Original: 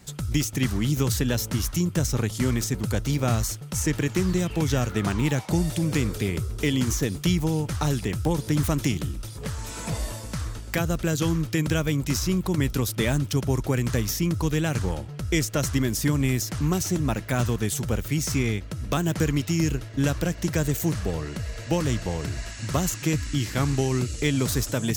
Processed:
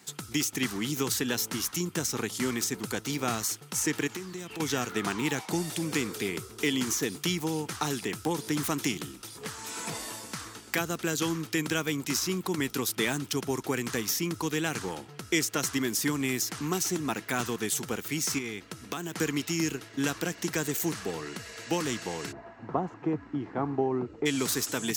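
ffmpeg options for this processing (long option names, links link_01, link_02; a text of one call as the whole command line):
ffmpeg -i in.wav -filter_complex "[0:a]asettb=1/sr,asplit=3[link_01][link_02][link_03];[link_01]atrim=end=4.074[link_04];[link_02]atrim=start=4.07:end=4.6,asetpts=PTS-STARTPTS,afade=type=in:duration=0.004:curve=qsin,afade=type=out:start_time=0.526:duration=0.004:curve=qsin,acompressor=threshold=-29dB:ratio=6:attack=3.2:release=140:knee=1:detection=peak[link_05];[link_03]atrim=start=4.596[link_06];[link_04][link_05]acrossfade=duration=0.004:curve1=hsin:curve2=qsin[link_07];[link_07][link_06]acrossfade=duration=0.004:curve1=qsin:curve2=hsin,asettb=1/sr,asplit=3[link_08][link_09][link_10];[link_08]atrim=end=18.384[link_11];[link_09]atrim=start=18.38:end=19.17,asetpts=PTS-STARTPTS,afade=type=in:duration=0.004:curve=qsin,afade=type=out:start_time=0.786:duration=0.004:curve=qsin,acompressor=threshold=-25dB:ratio=6:attack=3.2:release=140:knee=1:detection=peak[link_12];[link_10]atrim=start=19.166[link_13];[link_11][link_12]acrossfade=duration=0.004:curve1=hsin:curve2=qsin[link_14];[link_14][link_13]acrossfade=duration=0.004:curve1=qsin:curve2=hsin,asplit=3[link_15][link_16][link_17];[link_15]afade=type=out:start_time=22.31:duration=0.02[link_18];[link_16]lowpass=frequency=790:width_type=q:width=1.8,afade=type=in:start_time=22.31:duration=0.02,afade=type=out:start_time=24.25:duration=0.02[link_19];[link_17]afade=type=in:start_time=24.25:duration=0.02[link_20];[link_18][link_19][link_20]amix=inputs=3:normalize=0,highpass=300,equalizer=frequency=580:width_type=o:width=0.31:gain=-12" out.wav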